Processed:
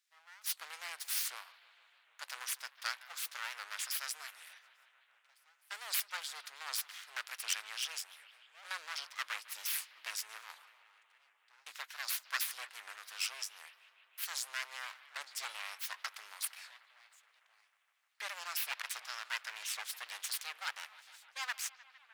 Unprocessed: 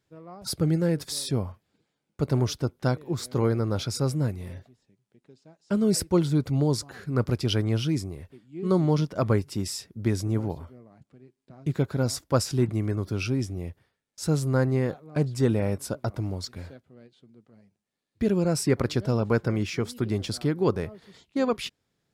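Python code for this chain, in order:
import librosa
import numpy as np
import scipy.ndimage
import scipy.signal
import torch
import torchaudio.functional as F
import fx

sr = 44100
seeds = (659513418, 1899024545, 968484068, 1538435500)

p1 = np.abs(x)
p2 = fx.rider(p1, sr, range_db=10, speed_s=0.5)
p3 = p1 + (p2 * librosa.db_to_amplitude(2.0))
p4 = scipy.signal.sosfilt(scipy.signal.bessel(4, 2100.0, 'highpass', norm='mag', fs=sr, output='sos'), p3)
p5 = fx.echo_bbd(p4, sr, ms=153, stages=4096, feedback_pct=80, wet_db=-19)
p6 = fx.record_warp(p5, sr, rpm=78.0, depth_cents=160.0)
y = p6 * librosa.db_to_amplitude(-5.0)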